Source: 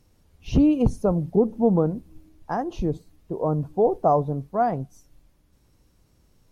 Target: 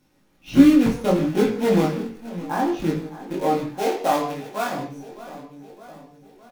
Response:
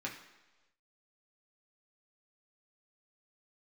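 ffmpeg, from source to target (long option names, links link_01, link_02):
-filter_complex "[0:a]equalizer=frequency=94:width_type=o:width=1.1:gain=-13.5,aecho=1:1:611|1222|1833|2444|3055:0.141|0.0777|0.0427|0.0235|0.0129,acrusher=bits=3:mode=log:mix=0:aa=0.000001,asettb=1/sr,asplit=3[link_01][link_02][link_03];[link_01]atrim=end=3.724[link_04];[link_02]atrim=start=3.72:end=4.78,asetpts=PTS-STARTPTS,afade=type=in:duration=0.004:curve=qsin,afade=type=out:start_time=1.056:duration=0.004:curve=qsin,lowshelf=frequency=390:gain=-9.5[link_05];[link_03]atrim=start=4.776[link_06];[link_04][link_05]acrossfade=duration=0.004:curve1=hsin:curve2=qsin[link_07];[link_07][link_06]acrossfade=duration=0.004:curve1=qsin:curve2=hsin[link_08];[1:a]atrim=start_sample=2205,afade=type=out:start_time=0.24:duration=0.01,atrim=end_sample=11025[link_09];[link_08][link_09]afir=irnorm=-1:irlink=0,flanger=delay=19:depth=3.8:speed=0.67,bandreject=frequency=50:width_type=h:width=6,bandreject=frequency=100:width_type=h:width=6,bandreject=frequency=150:width_type=h:width=6,volume=6dB"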